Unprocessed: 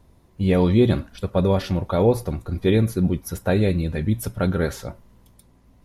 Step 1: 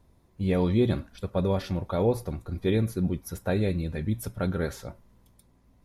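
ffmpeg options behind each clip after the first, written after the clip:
ffmpeg -i in.wav -af "bandreject=frequency=2900:width=21,volume=-6.5dB" out.wav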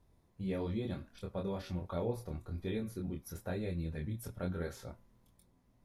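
ffmpeg -i in.wav -af "acompressor=threshold=-34dB:ratio=1.5,flanger=delay=22.5:depth=3.6:speed=1.1,volume=-4dB" out.wav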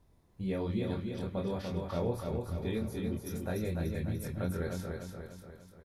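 ffmpeg -i in.wav -af "aecho=1:1:294|588|882|1176|1470|1764:0.596|0.298|0.149|0.0745|0.0372|0.0186,volume=2.5dB" out.wav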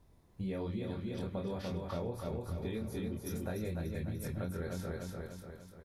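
ffmpeg -i in.wav -af "acompressor=threshold=-36dB:ratio=6,volume=1.5dB" out.wav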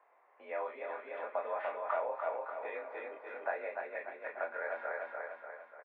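ffmpeg -i in.wav -filter_complex "[0:a]highpass=frequency=590:width_type=q:width=0.5412,highpass=frequency=590:width_type=q:width=1.307,lowpass=frequency=2200:width_type=q:width=0.5176,lowpass=frequency=2200:width_type=q:width=0.7071,lowpass=frequency=2200:width_type=q:width=1.932,afreqshift=51,asplit=2[link_01][link_02];[link_02]adelay=38,volume=-13dB[link_03];[link_01][link_03]amix=inputs=2:normalize=0,volume=10dB" out.wav

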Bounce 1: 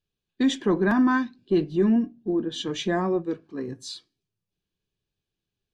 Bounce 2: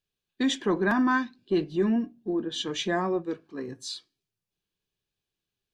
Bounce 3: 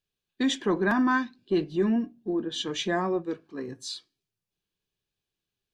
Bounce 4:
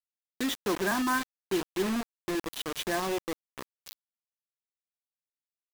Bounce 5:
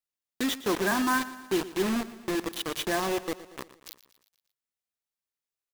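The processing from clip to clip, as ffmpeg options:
ffmpeg -i in.wav -af "lowshelf=frequency=430:gain=-7,volume=1dB" out.wav
ffmpeg -i in.wav -af anull out.wav
ffmpeg -i in.wav -af "bass=frequency=250:gain=-7,treble=frequency=4000:gain=-4,acrusher=bits=4:mix=0:aa=0.000001,volume=-3dB" out.wav
ffmpeg -i in.wav -af "aecho=1:1:117|234|351|468|585:0.158|0.0888|0.0497|0.0278|0.0156,volume=2dB" out.wav

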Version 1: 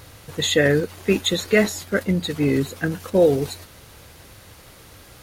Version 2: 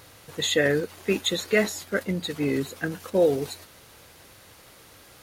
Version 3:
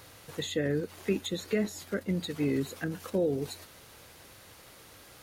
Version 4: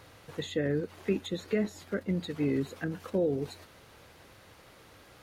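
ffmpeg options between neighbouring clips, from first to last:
ffmpeg -i in.wav -af "lowshelf=frequency=140:gain=-10.5,volume=-3.5dB" out.wav
ffmpeg -i in.wav -filter_complex "[0:a]acrossover=split=380[link_01][link_02];[link_02]acompressor=threshold=-34dB:ratio=5[link_03];[link_01][link_03]amix=inputs=2:normalize=0,volume=-2dB" out.wav
ffmpeg -i in.wav -af "highshelf=frequency=4900:gain=-11.5" out.wav

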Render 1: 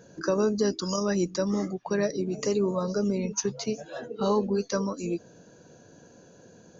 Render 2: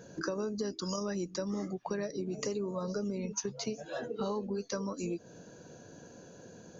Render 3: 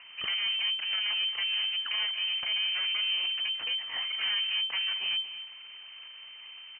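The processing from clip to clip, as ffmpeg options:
ffmpeg -i in.wav -af "acompressor=threshold=-34dB:ratio=5,volume=1dB" out.wav
ffmpeg -i in.wav -af "aeval=exprs='abs(val(0))':channel_layout=same,aecho=1:1:225:0.224,lowpass=frequency=2600:width_type=q:width=0.5098,lowpass=frequency=2600:width_type=q:width=0.6013,lowpass=frequency=2600:width_type=q:width=0.9,lowpass=frequency=2600:width_type=q:width=2.563,afreqshift=-3100,volume=4dB" out.wav

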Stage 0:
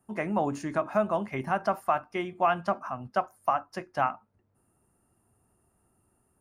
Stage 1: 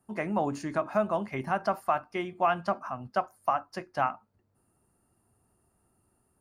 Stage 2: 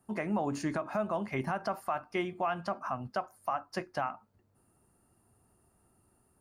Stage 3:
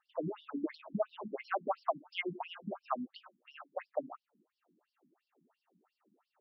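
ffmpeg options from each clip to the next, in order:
ffmpeg -i in.wav -af "equalizer=frequency=4500:width_type=o:width=0.25:gain=6,volume=-1dB" out.wav
ffmpeg -i in.wav -af "alimiter=limit=-24dB:level=0:latency=1:release=183,volume=2dB" out.wav
ffmpeg -i in.wav -af "afftfilt=real='re*between(b*sr/1024,220*pow(4100/220,0.5+0.5*sin(2*PI*2.9*pts/sr))/1.41,220*pow(4100/220,0.5+0.5*sin(2*PI*2.9*pts/sr))*1.41)':imag='im*between(b*sr/1024,220*pow(4100/220,0.5+0.5*sin(2*PI*2.9*pts/sr))/1.41,220*pow(4100/220,0.5+0.5*sin(2*PI*2.9*pts/sr))*1.41)':win_size=1024:overlap=0.75,volume=4.5dB" out.wav

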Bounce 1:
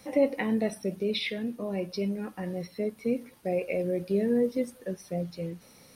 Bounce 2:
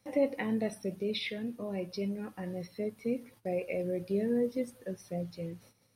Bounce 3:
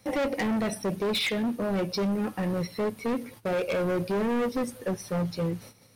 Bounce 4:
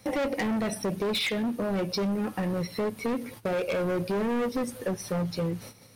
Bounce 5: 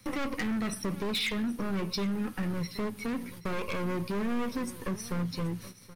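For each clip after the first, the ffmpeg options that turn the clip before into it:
ffmpeg -i in.wav -af "agate=range=-13dB:threshold=-52dB:ratio=16:detection=peak,equalizer=frequency=110:width_type=o:width=0.22:gain=13,volume=-4.5dB" out.wav
ffmpeg -i in.wav -filter_complex "[0:a]asplit=2[link_01][link_02];[link_02]alimiter=level_in=2.5dB:limit=-24dB:level=0:latency=1:release=246,volume=-2.5dB,volume=-2dB[link_03];[link_01][link_03]amix=inputs=2:normalize=0,asoftclip=type=hard:threshold=-31.5dB,volume=7dB" out.wav
ffmpeg -i in.wav -af "acompressor=threshold=-32dB:ratio=3,volume=4dB" out.wav
ffmpeg -i in.wav -filter_complex "[0:a]acrossover=split=450|980[link_01][link_02][link_03];[link_02]aeval=exprs='abs(val(0))':channel_layout=same[link_04];[link_01][link_04][link_03]amix=inputs=3:normalize=0,aecho=1:1:776:0.141,volume=-2dB" out.wav

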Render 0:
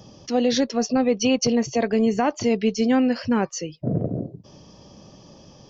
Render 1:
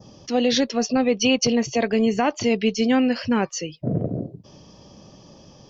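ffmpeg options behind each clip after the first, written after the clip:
ffmpeg -i in.wav -af "adynamicequalizer=threshold=0.00631:dfrequency=2900:dqfactor=1.1:tfrequency=2900:tqfactor=1.1:attack=5:release=100:ratio=0.375:range=3:mode=boostabove:tftype=bell" out.wav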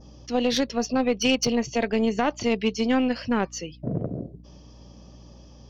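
ffmpeg -i in.wav -af "aeval=exprs='0.447*(cos(1*acos(clip(val(0)/0.447,-1,1)))-cos(1*PI/2))+0.0708*(cos(3*acos(clip(val(0)/0.447,-1,1)))-cos(3*PI/2))+0.00891*(cos(4*acos(clip(val(0)/0.447,-1,1)))-cos(4*PI/2))+0.00316*(cos(5*acos(clip(val(0)/0.447,-1,1)))-cos(5*PI/2))':channel_layout=same,aeval=exprs='val(0)+0.00447*(sin(2*PI*60*n/s)+sin(2*PI*2*60*n/s)/2+sin(2*PI*3*60*n/s)/3+sin(2*PI*4*60*n/s)/4+sin(2*PI*5*60*n/s)/5)':channel_layout=same" out.wav

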